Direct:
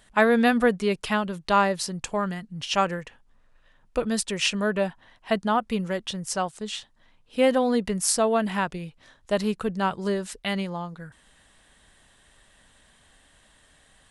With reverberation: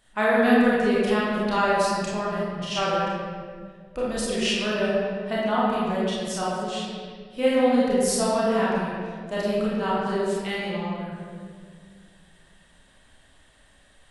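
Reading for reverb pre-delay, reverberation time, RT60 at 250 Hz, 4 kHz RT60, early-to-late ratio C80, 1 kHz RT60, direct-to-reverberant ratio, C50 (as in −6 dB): 28 ms, 2.0 s, 2.7 s, 1.2 s, −0.5 dB, 1.6 s, −8.0 dB, −3.5 dB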